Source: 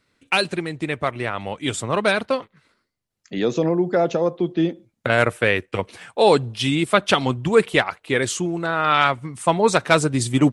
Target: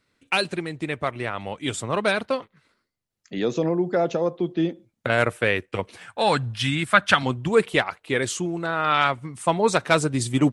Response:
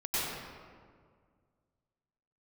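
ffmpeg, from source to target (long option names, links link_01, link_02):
-filter_complex "[0:a]asettb=1/sr,asplit=3[link_01][link_02][link_03];[link_01]atrim=end=6.084[link_04];[link_02]atrim=start=6.08:end=7.23,asetpts=PTS-STARTPTS,afade=type=in:duration=0.004:curve=qsin,afade=type=out:start_time=1.146:duration=0.004:curve=qsin,equalizer=frequency=100:width_type=o:width=0.67:gain=7,equalizer=frequency=400:width_type=o:width=0.67:gain=-11,equalizer=frequency=1600:width_type=o:width=0.67:gain=10[link_05];[link_03]atrim=start=7.226[link_06];[link_04][link_05]acrossfade=duration=0.004:curve1=hsin:curve2=qsin[link_07];[link_07][link_06]acrossfade=duration=0.004:curve1=qsin:curve2=hsin,volume=-3dB"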